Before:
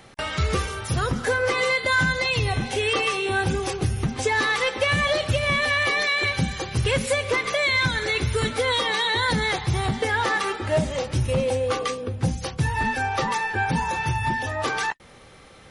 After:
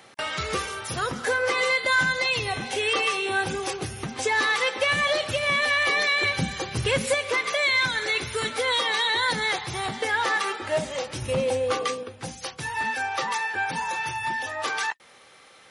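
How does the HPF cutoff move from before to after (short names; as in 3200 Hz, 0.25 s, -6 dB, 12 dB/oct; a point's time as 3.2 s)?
HPF 6 dB/oct
430 Hz
from 5.89 s 170 Hz
from 7.14 s 560 Hz
from 11.22 s 230 Hz
from 12.03 s 890 Hz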